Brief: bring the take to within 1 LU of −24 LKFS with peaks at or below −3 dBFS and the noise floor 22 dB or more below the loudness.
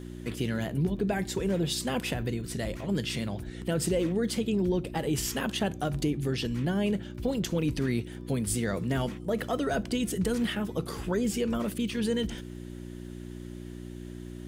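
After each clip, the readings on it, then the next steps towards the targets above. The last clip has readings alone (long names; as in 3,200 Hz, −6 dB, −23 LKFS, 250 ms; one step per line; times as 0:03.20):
crackle rate 33 per second; mains hum 60 Hz; hum harmonics up to 360 Hz; level of the hum −38 dBFS; integrated loudness −30.0 LKFS; sample peak −16.5 dBFS; target loudness −24.0 LKFS
→ click removal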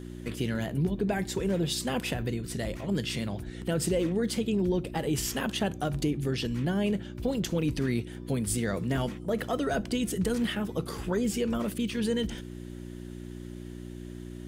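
crackle rate 0.35 per second; mains hum 60 Hz; hum harmonics up to 360 Hz; level of the hum −38 dBFS
→ hum removal 60 Hz, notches 6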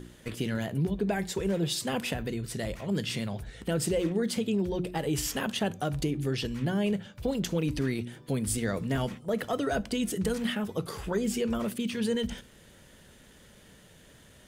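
mains hum none found; integrated loudness −31.0 LKFS; sample peak −16.5 dBFS; target loudness −24.0 LKFS
→ level +7 dB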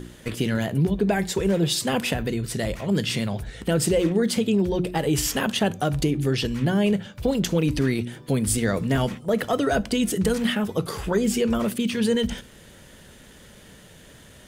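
integrated loudness −24.0 LKFS; sample peak −9.5 dBFS; background noise floor −48 dBFS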